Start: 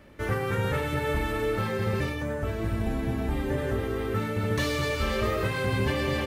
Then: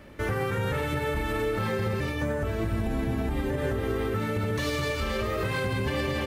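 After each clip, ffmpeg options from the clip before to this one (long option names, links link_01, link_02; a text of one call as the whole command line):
ffmpeg -i in.wav -af "alimiter=limit=-23.5dB:level=0:latency=1:release=129,volume=4dB" out.wav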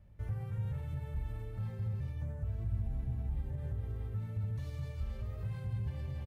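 ffmpeg -i in.wav -af "firequalizer=gain_entry='entry(120,0);entry(280,-23);entry(760,-16);entry(1200,-23);entry(11000,-19)':delay=0.05:min_phase=1,volume=-4.5dB" out.wav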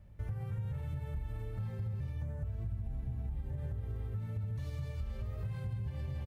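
ffmpeg -i in.wav -af "acompressor=threshold=-37dB:ratio=6,volume=3dB" out.wav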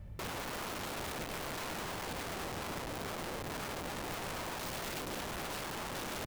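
ffmpeg -i in.wav -af "aeval=exprs='(mod(150*val(0)+1,2)-1)/150':channel_layout=same,volume=8dB" out.wav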